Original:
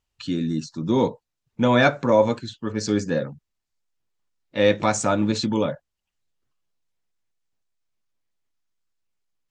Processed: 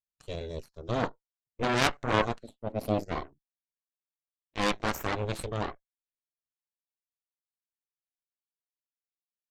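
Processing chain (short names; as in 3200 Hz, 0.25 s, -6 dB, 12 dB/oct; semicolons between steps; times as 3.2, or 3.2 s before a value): added harmonics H 3 -10 dB, 8 -19 dB, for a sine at -4 dBFS; 2.43–3.03 fifteen-band EQ 250 Hz +12 dB, 630 Hz +9 dB, 1600 Hz -10 dB, 6300 Hz -10 dB; gain -3 dB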